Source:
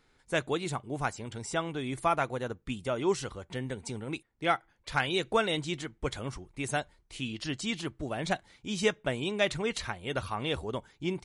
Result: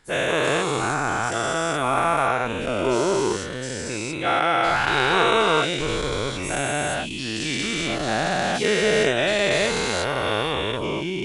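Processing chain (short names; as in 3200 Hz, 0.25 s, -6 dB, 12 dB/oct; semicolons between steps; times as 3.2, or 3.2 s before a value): spectral dilation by 0.48 s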